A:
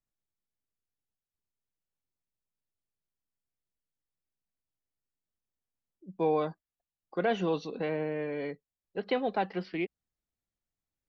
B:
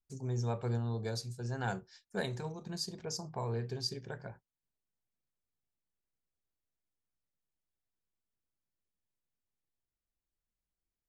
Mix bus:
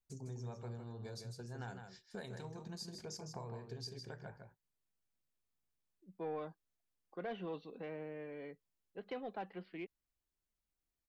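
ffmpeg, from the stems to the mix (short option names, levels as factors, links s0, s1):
-filter_complex "[0:a]lowpass=f=3800:w=0.5412,lowpass=f=3800:w=1.3066,asoftclip=type=tanh:threshold=0.0944,volume=0.237[s0];[1:a]acompressor=threshold=0.00631:ratio=5,volume=0.891,asplit=2[s1][s2];[s2]volume=0.473,aecho=0:1:157:1[s3];[s0][s1][s3]amix=inputs=3:normalize=0"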